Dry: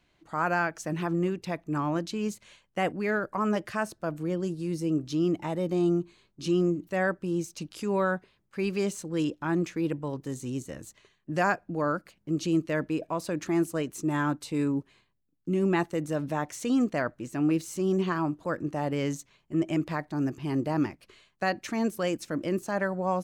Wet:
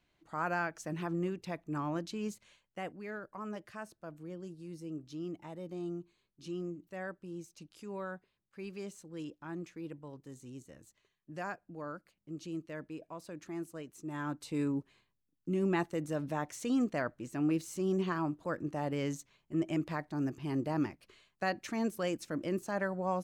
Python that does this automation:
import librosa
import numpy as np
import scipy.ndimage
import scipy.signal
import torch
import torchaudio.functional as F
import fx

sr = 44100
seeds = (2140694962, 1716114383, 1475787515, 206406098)

y = fx.gain(x, sr, db=fx.line((2.3, -7.0), (2.96, -14.5), (14.0, -14.5), (14.52, -5.5)))